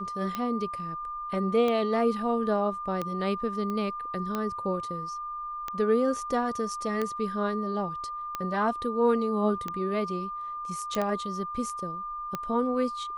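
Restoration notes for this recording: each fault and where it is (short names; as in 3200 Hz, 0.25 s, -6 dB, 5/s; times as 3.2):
tick 45 rpm -17 dBFS
tone 1200 Hz -33 dBFS
3.7 pop -22 dBFS
10.95 pop -16 dBFS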